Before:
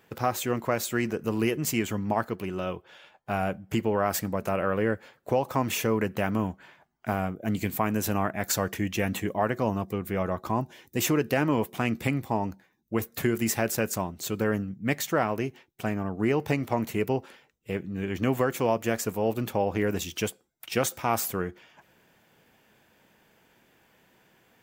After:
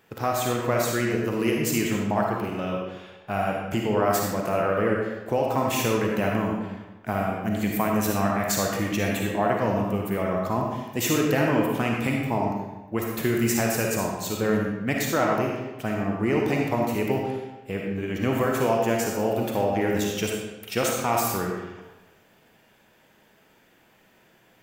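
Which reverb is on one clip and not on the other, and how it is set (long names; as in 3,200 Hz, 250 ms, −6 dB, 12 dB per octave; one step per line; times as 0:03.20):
comb and all-pass reverb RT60 1.1 s, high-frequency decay 0.8×, pre-delay 15 ms, DRR −1 dB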